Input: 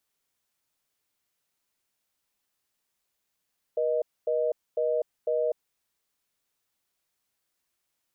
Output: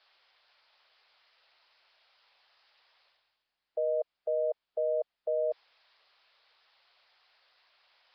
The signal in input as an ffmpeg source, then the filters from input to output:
-f lavfi -i "aevalsrc='0.0501*(sin(2*PI*480*t)+sin(2*PI*620*t))*clip(min(mod(t,0.5),0.25-mod(t,0.5))/0.005,0,1)':d=1.75:s=44100"
-af "highpass=f=540:w=0.5412,highpass=f=540:w=1.3066,areverse,acompressor=mode=upward:threshold=-44dB:ratio=2.5,areverse" -ar 11025 -c:a nellymoser

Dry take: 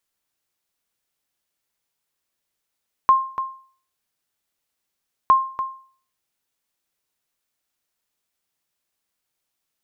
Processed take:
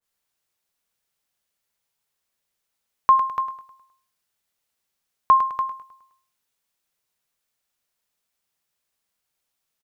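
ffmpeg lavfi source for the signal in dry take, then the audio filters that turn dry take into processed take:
-f lavfi -i "aevalsrc='0.447*(sin(2*PI*1060*mod(t,2.21))*exp(-6.91*mod(t,2.21)/0.46)+0.282*sin(2*PI*1060*max(mod(t,2.21)-0.29,0))*exp(-6.91*max(mod(t,2.21)-0.29,0)/0.46))':d=4.42:s=44100"
-filter_complex "[0:a]equalizer=f=310:w=5.6:g=-7,asplit=2[a][b];[b]aecho=0:1:104|208|312|416|520:0.237|0.109|0.0502|0.0231|0.0106[c];[a][c]amix=inputs=2:normalize=0,adynamicequalizer=threshold=0.0355:dfrequency=1500:dqfactor=0.7:tfrequency=1500:tqfactor=0.7:attack=5:release=100:ratio=0.375:range=3.5:mode=boostabove:tftype=highshelf"

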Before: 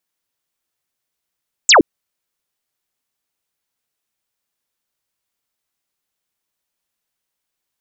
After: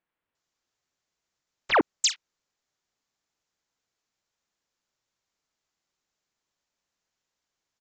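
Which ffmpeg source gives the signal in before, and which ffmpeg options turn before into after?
-f lavfi -i "aevalsrc='0.562*clip(t/0.002,0,1)*clip((0.12-t)/0.002,0,1)*sin(2*PI*8200*0.12/log(250/8200)*(exp(log(250/8200)*t/0.12)-1))':d=0.12:s=44100"
-filter_complex "[0:a]aresample=16000,asoftclip=type=tanh:threshold=-17dB,aresample=44100,acrossover=split=2900[a][b];[b]adelay=350[c];[a][c]amix=inputs=2:normalize=0"

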